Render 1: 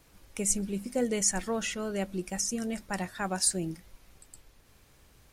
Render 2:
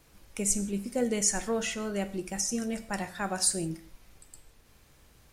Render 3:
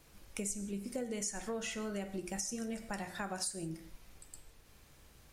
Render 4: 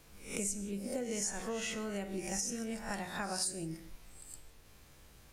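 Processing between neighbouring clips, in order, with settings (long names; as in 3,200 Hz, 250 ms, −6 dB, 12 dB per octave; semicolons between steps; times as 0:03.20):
reverb whose tail is shaped and stops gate 200 ms falling, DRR 10 dB
hum removal 58.62 Hz, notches 38; downward compressor 6 to 1, threshold −35 dBFS, peak gain reduction 13.5 dB; level −1 dB
peak hold with a rise ahead of every peak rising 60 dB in 0.45 s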